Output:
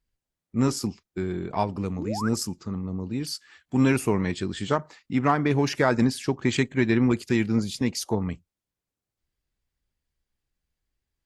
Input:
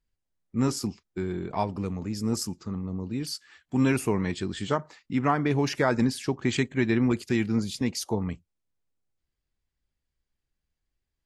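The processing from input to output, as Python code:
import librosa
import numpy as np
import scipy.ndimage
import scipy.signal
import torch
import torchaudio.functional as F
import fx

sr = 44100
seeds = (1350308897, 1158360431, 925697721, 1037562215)

y = fx.cheby_harmonics(x, sr, harmonics=(7,), levels_db=(-35,), full_scale_db=-10.5)
y = fx.spec_paint(y, sr, seeds[0], shape='rise', start_s=1.98, length_s=0.31, low_hz=240.0, high_hz=1700.0, level_db=-35.0)
y = y * 10.0 ** (2.5 / 20.0)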